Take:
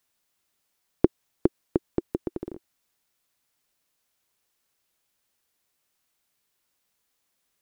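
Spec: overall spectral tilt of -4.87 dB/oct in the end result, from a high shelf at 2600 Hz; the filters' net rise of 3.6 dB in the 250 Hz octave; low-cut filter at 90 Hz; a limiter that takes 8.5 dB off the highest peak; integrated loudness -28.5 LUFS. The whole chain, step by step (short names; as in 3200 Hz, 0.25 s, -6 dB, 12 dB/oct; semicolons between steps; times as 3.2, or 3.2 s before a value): HPF 90 Hz; bell 250 Hz +5 dB; high shelf 2600 Hz +7 dB; gain +3.5 dB; limiter -5 dBFS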